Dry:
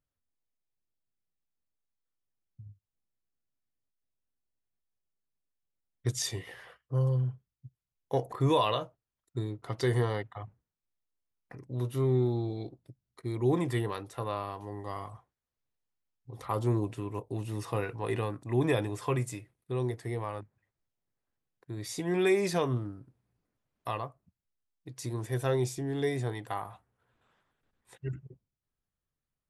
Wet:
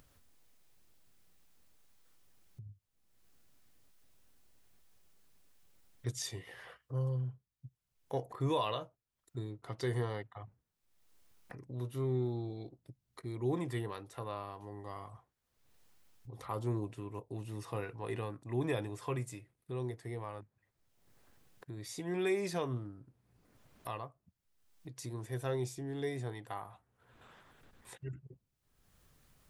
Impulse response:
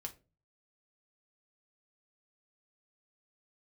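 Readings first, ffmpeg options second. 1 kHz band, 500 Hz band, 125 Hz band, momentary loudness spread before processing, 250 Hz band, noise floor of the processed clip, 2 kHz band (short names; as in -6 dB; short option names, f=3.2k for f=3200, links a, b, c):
-7.0 dB, -7.0 dB, -7.0 dB, 16 LU, -7.0 dB, -84 dBFS, -7.0 dB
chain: -af "acompressor=mode=upward:threshold=-35dB:ratio=2.5,volume=-7dB"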